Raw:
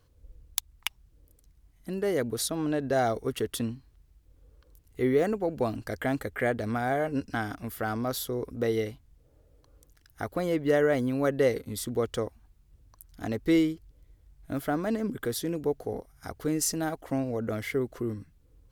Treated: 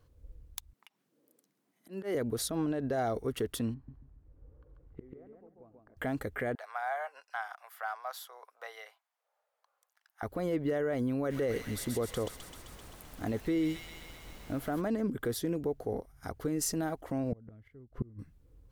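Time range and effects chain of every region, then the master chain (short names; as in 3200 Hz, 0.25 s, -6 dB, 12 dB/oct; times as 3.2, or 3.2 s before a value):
0.73–2.15 steep high-pass 190 Hz + dynamic EQ 2200 Hz, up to +5 dB, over -49 dBFS, Q 0.72 + auto swell 0.15 s
3.74–5.97 LPF 1400 Hz + flipped gate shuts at -29 dBFS, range -30 dB + feedback echo 0.139 s, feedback 26%, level -3 dB
6.55–10.23 steep high-pass 740 Hz + high shelf 2800 Hz -8.5 dB
11.29–14.8 notch 5000 Hz, Q 21 + thin delay 0.13 s, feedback 74%, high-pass 2500 Hz, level -3.5 dB + added noise pink -50 dBFS
17.32–18.19 flipped gate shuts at -25 dBFS, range -30 dB + tone controls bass +14 dB, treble -12 dB
whole clip: high shelf 2600 Hz -9 dB; limiter -24 dBFS; high shelf 5900 Hz +5 dB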